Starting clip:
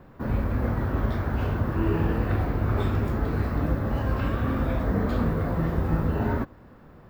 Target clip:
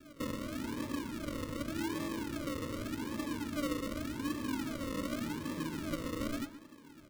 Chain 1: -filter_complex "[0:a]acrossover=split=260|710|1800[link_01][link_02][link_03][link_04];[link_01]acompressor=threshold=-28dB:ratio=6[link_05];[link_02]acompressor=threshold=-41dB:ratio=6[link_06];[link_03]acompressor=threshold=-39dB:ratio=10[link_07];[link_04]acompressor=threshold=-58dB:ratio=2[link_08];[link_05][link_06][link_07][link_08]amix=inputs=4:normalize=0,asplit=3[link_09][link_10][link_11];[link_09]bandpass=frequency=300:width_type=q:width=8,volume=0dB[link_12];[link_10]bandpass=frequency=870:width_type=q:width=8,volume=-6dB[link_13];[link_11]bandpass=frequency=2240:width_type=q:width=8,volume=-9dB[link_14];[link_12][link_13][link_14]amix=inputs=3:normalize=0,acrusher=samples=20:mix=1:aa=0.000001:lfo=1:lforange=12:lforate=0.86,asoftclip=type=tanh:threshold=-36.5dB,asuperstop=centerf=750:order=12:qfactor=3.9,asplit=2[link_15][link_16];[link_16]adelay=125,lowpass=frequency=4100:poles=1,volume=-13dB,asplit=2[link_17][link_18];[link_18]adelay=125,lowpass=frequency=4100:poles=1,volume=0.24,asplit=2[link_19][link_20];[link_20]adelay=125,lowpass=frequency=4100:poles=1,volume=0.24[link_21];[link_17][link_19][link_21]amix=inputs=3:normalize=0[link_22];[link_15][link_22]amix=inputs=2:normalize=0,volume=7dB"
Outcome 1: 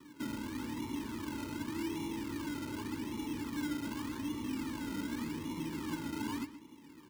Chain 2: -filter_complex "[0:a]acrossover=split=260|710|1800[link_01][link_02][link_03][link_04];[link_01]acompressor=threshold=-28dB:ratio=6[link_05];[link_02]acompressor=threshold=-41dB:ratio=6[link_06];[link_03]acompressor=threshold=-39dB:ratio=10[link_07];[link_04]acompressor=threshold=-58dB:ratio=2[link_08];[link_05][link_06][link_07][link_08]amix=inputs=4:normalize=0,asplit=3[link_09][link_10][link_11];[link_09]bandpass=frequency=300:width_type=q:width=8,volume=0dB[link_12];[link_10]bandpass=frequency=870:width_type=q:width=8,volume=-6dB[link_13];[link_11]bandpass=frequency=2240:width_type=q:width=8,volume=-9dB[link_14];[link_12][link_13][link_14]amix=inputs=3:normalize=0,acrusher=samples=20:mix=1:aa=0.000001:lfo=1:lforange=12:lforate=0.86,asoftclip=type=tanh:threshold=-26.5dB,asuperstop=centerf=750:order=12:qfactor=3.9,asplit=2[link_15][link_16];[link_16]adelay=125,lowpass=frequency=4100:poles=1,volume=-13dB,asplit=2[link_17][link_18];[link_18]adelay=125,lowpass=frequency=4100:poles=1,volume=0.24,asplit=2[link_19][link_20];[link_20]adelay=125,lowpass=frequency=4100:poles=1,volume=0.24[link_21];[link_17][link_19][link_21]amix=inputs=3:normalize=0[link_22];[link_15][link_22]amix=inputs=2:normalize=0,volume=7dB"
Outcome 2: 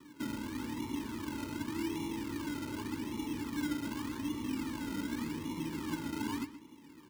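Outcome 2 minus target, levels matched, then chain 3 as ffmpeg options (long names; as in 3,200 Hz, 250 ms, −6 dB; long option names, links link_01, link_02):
sample-and-hold swept by an LFO: distortion −8 dB
-filter_complex "[0:a]acrossover=split=260|710|1800[link_01][link_02][link_03][link_04];[link_01]acompressor=threshold=-28dB:ratio=6[link_05];[link_02]acompressor=threshold=-41dB:ratio=6[link_06];[link_03]acompressor=threshold=-39dB:ratio=10[link_07];[link_04]acompressor=threshold=-58dB:ratio=2[link_08];[link_05][link_06][link_07][link_08]amix=inputs=4:normalize=0,asplit=3[link_09][link_10][link_11];[link_09]bandpass=frequency=300:width_type=q:width=8,volume=0dB[link_12];[link_10]bandpass=frequency=870:width_type=q:width=8,volume=-6dB[link_13];[link_11]bandpass=frequency=2240:width_type=q:width=8,volume=-9dB[link_14];[link_12][link_13][link_14]amix=inputs=3:normalize=0,acrusher=samples=43:mix=1:aa=0.000001:lfo=1:lforange=25.8:lforate=0.86,asoftclip=type=tanh:threshold=-26.5dB,asuperstop=centerf=750:order=12:qfactor=3.9,asplit=2[link_15][link_16];[link_16]adelay=125,lowpass=frequency=4100:poles=1,volume=-13dB,asplit=2[link_17][link_18];[link_18]adelay=125,lowpass=frequency=4100:poles=1,volume=0.24,asplit=2[link_19][link_20];[link_20]adelay=125,lowpass=frequency=4100:poles=1,volume=0.24[link_21];[link_17][link_19][link_21]amix=inputs=3:normalize=0[link_22];[link_15][link_22]amix=inputs=2:normalize=0,volume=7dB"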